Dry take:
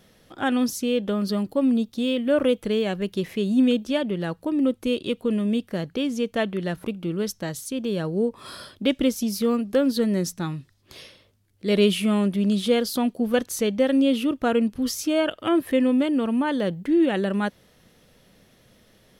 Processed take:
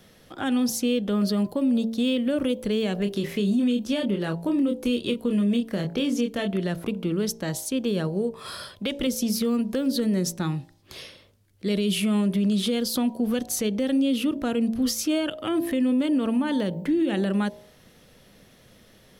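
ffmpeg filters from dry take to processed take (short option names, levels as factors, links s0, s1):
-filter_complex "[0:a]asettb=1/sr,asplit=3[s0][s1][s2];[s0]atrim=end=3.024[s3];[s1]atrim=start=3.02:end=6.56,asetpts=PTS-STARTPTS,afade=t=in:d=0.004:c=qsin,afade=t=out:st=3.536:d=0.004:c=qsin,asplit=2[s4][s5];[s5]adelay=25,volume=0.531[s6];[s4][s6]amix=inputs=2:normalize=0,atrim=end_sample=156114[s7];[s2]atrim=start=6.556[s8];[s3][s7]acrossfade=d=0.004:c1=hsin:c2=qsin[s9];[s9][s8]acrossfade=d=0.004:c1=qsin:c2=hsin,asettb=1/sr,asplit=3[s10][s11][s12];[s10]atrim=end=8.074[s13];[s11]atrim=start=8.07:end=9.07,asetpts=PTS-STARTPTS,afade=t=in:d=0.004:c=qsin,afade=t=out:st=0.996:d=0.004:c=qsin,equalizer=f=280:t=o:w=0.77:g=-8[s14];[s12]atrim=start=9.066[s15];[s13][s14]acrossfade=d=0.004:c1=hsin:c2=qsin[s16];[s16][s15]acrossfade=d=0.004:c1=qsin:c2=hsin,bandreject=f=56.5:t=h:w=4,bandreject=f=113:t=h:w=4,bandreject=f=169.5:t=h:w=4,bandreject=f=226:t=h:w=4,bandreject=f=282.5:t=h:w=4,bandreject=f=339:t=h:w=4,bandreject=f=395.5:t=h:w=4,bandreject=f=452:t=h:w=4,bandreject=f=508.5:t=h:w=4,bandreject=f=565:t=h:w=4,bandreject=f=621.5:t=h:w=4,bandreject=f=678:t=h:w=4,bandreject=f=734.5:t=h:w=4,bandreject=f=791:t=h:w=4,bandreject=f=847.5:t=h:w=4,bandreject=f=904:t=h:w=4,bandreject=f=960.5:t=h:w=4,bandreject=f=1017:t=h:w=4,acrossover=split=330|3000[s17][s18][s19];[s18]acompressor=threshold=0.0316:ratio=6[s20];[s17][s20][s19]amix=inputs=3:normalize=0,alimiter=limit=0.106:level=0:latency=1:release=62,volume=1.41"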